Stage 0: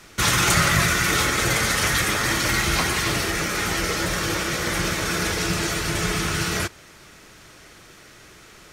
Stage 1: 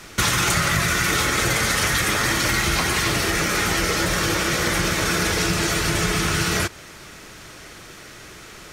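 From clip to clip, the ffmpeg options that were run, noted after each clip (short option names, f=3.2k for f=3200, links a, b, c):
-af "acompressor=threshold=-24dB:ratio=4,volume=6dB"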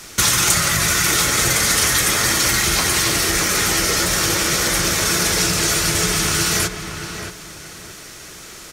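-filter_complex "[0:a]bass=f=250:g=-1,treble=f=4k:g=9,asplit=2[a][b];[b]adelay=627,lowpass=f=2.6k:p=1,volume=-7.5dB,asplit=2[c][d];[d]adelay=627,lowpass=f=2.6k:p=1,volume=0.28,asplit=2[e][f];[f]adelay=627,lowpass=f=2.6k:p=1,volume=0.28[g];[a][c][e][g]amix=inputs=4:normalize=0"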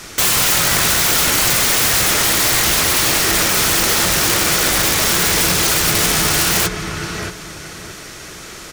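-af "highshelf=f=5k:g=-5.5,aeval=exprs='(mod(5.31*val(0)+1,2)-1)/5.31':c=same,volume=5.5dB"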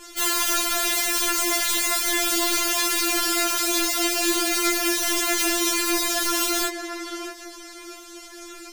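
-af "flanger=delay=20:depth=3.2:speed=1.6,afftfilt=real='re*4*eq(mod(b,16),0)':imag='im*4*eq(mod(b,16),0)':win_size=2048:overlap=0.75,volume=-2.5dB"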